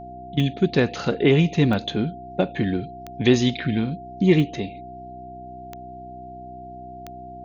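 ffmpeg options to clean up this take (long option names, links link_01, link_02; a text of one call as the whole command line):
ffmpeg -i in.wav -af "adeclick=threshold=4,bandreject=frequency=63:width_type=h:width=4,bandreject=frequency=126:width_type=h:width=4,bandreject=frequency=189:width_type=h:width=4,bandreject=frequency=252:width_type=h:width=4,bandreject=frequency=315:width_type=h:width=4,bandreject=frequency=378:width_type=h:width=4,bandreject=frequency=700:width=30" out.wav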